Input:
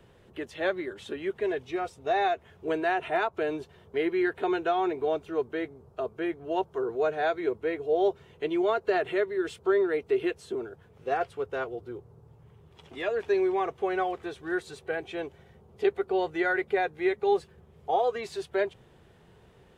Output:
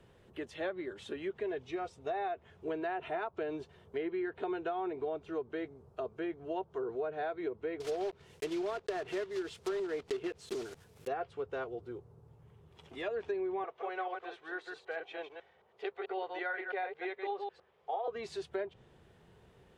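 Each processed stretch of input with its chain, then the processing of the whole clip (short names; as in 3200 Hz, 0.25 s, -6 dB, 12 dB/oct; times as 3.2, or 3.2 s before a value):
7.8–11.08 block floating point 3-bit + high shelf 5100 Hz +6.5 dB
13.64–18.08 reverse delay 0.11 s, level -5.5 dB + three-band isolator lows -22 dB, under 480 Hz, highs -17 dB, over 4700 Hz
whole clip: treble ducked by the level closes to 2600 Hz, closed at -22.5 dBFS; dynamic EQ 2000 Hz, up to -3 dB, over -42 dBFS, Q 1.2; compressor, threshold -28 dBFS; gain -4.5 dB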